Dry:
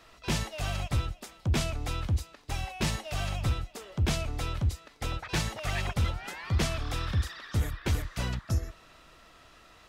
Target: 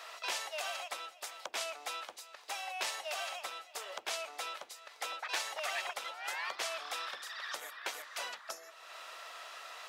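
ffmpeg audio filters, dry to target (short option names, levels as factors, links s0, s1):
-af "acompressor=threshold=0.00398:ratio=2,highpass=f=580:w=0.5412,highpass=f=580:w=1.3066,volume=2.82"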